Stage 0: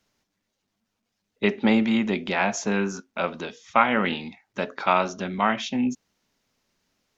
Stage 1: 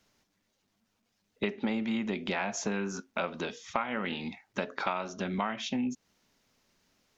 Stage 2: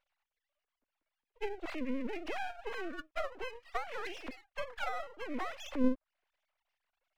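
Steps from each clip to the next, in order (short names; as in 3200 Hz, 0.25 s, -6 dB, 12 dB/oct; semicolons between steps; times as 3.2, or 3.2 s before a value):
compressor 6:1, threshold -31 dBFS, peak gain reduction 17.5 dB; gain +2 dB
sine-wave speech; treble ducked by the level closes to 1100 Hz, closed at -27 dBFS; half-wave rectifier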